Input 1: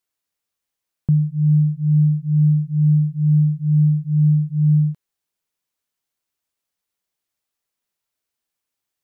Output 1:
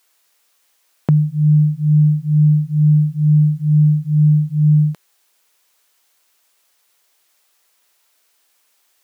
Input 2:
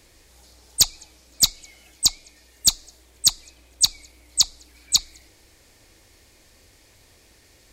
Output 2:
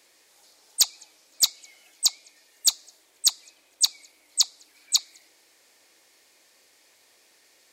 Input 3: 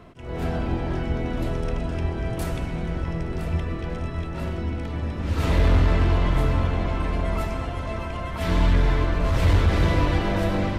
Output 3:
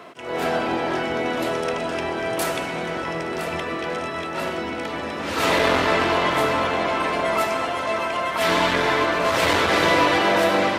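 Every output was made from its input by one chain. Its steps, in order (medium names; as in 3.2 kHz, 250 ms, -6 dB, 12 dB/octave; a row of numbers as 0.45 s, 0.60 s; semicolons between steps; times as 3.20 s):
Bessel high-pass 530 Hz, order 2; peak normalisation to -6 dBFS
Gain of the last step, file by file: +21.0 dB, -3.0 dB, +11.0 dB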